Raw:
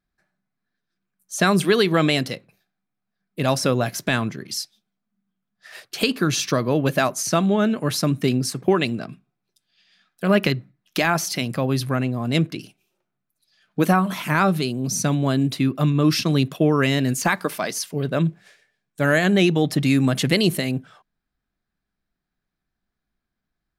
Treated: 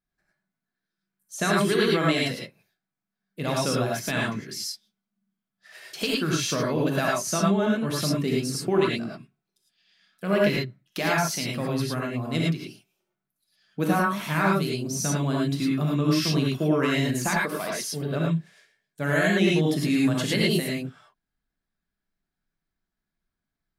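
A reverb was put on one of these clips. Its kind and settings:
reverb whose tail is shaped and stops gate 130 ms rising, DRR −3.5 dB
level −8.5 dB

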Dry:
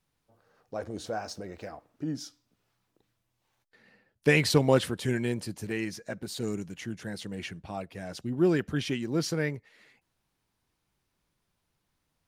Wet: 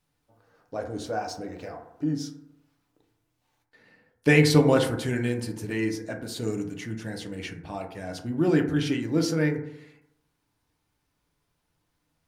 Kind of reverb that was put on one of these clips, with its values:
feedback delay network reverb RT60 0.8 s, low-frequency decay 1×, high-frequency decay 0.3×, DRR 3 dB
level +1 dB

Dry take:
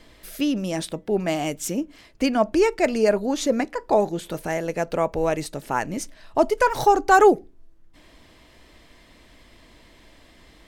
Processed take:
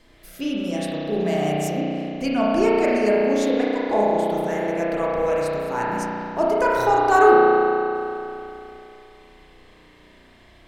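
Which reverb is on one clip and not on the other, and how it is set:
spring reverb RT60 2.9 s, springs 33 ms, chirp 30 ms, DRR −6 dB
level −5.5 dB

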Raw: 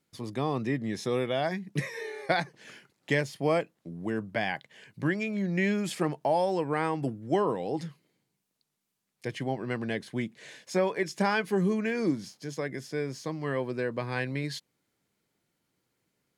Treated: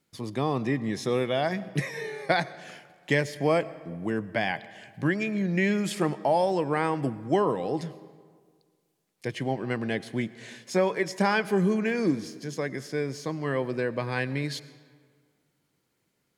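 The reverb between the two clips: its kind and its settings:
comb and all-pass reverb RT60 1.8 s, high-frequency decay 0.65×, pre-delay 55 ms, DRR 17 dB
level +2.5 dB

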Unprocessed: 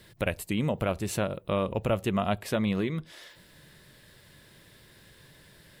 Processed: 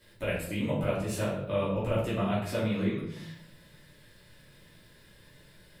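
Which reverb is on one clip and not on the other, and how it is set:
rectangular room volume 150 cubic metres, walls mixed, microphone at 2.7 metres
level −12 dB

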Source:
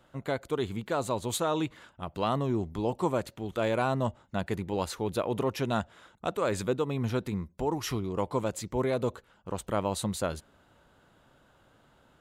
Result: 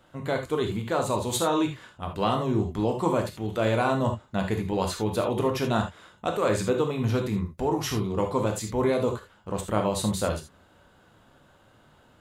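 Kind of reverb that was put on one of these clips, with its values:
reverb whose tail is shaped and stops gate 100 ms flat, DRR 3 dB
level +2.5 dB

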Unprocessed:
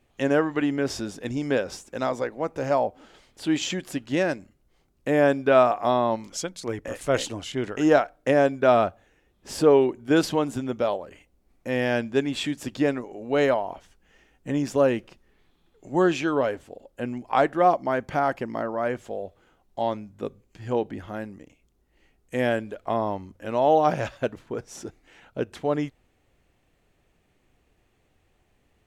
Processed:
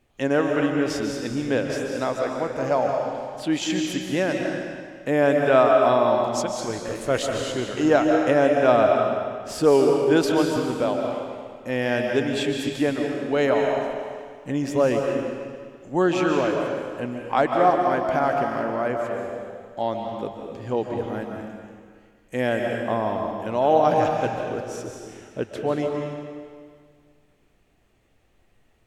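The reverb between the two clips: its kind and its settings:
comb and all-pass reverb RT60 1.9 s, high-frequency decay 0.95×, pre-delay 105 ms, DRR 1.5 dB

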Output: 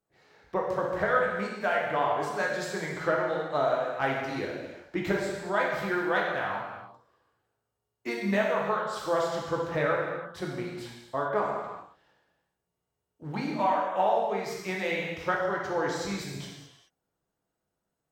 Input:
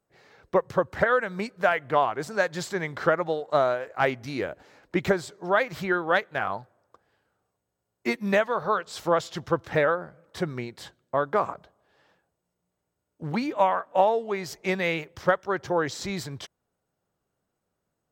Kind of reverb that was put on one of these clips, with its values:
reverb whose tail is shaped and stops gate 450 ms falling, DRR −3 dB
level −7.5 dB

